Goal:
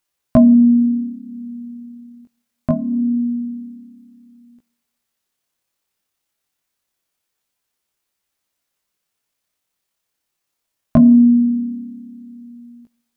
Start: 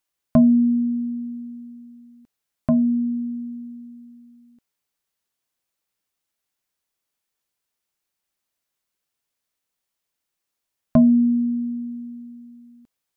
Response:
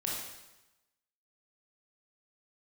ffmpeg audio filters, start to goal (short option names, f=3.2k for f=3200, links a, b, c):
-filter_complex "[0:a]tremolo=f=34:d=0.333,flanger=delay=15:depth=5.8:speed=0.25,asplit=2[a][b];[1:a]atrim=start_sample=2205[c];[b][c]afir=irnorm=-1:irlink=0,volume=-25.5dB[d];[a][d]amix=inputs=2:normalize=0,volume=9dB"